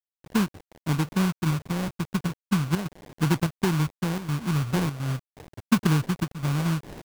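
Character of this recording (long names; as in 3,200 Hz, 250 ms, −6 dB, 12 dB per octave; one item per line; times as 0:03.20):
phaser sweep stages 2, 0.42 Hz, lowest notch 470–1,100 Hz
aliases and images of a low sample rate 1,300 Hz, jitter 20%
chopped level 1.4 Hz, depth 65%, duty 85%
a quantiser's noise floor 8 bits, dither none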